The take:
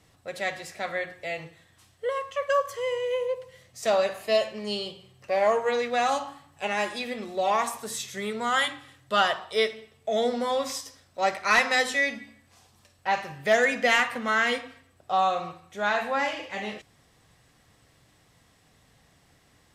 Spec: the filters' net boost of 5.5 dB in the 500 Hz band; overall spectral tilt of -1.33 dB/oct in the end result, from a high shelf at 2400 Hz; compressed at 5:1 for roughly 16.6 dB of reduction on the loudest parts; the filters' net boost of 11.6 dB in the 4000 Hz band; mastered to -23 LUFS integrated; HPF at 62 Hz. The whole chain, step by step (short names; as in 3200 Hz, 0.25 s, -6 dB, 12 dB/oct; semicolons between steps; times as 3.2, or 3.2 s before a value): HPF 62 Hz; bell 500 Hz +6 dB; high shelf 2400 Hz +7.5 dB; bell 4000 Hz +8 dB; compressor 5:1, threshold -31 dBFS; gain +10.5 dB